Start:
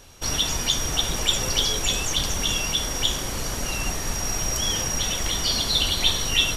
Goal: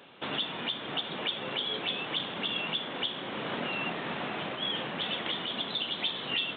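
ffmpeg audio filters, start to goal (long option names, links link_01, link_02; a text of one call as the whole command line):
ffmpeg -i in.wav -af "highpass=frequency=170:width=0.5412,highpass=frequency=170:width=1.3066,alimiter=limit=-19dB:level=0:latency=1:release=452,aresample=8000,aresample=44100" out.wav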